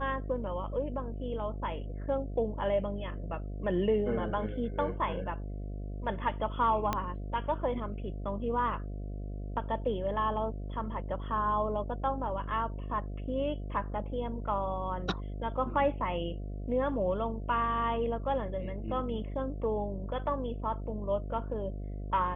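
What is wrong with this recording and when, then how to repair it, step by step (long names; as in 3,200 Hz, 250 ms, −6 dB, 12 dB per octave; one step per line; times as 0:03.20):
mains buzz 50 Hz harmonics 14 −38 dBFS
0:06.93: click −15 dBFS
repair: click removal
hum removal 50 Hz, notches 14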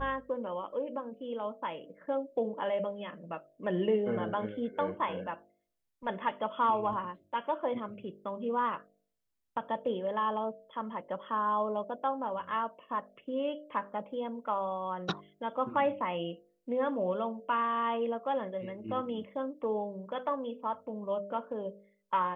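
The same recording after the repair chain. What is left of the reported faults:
0:06.93: click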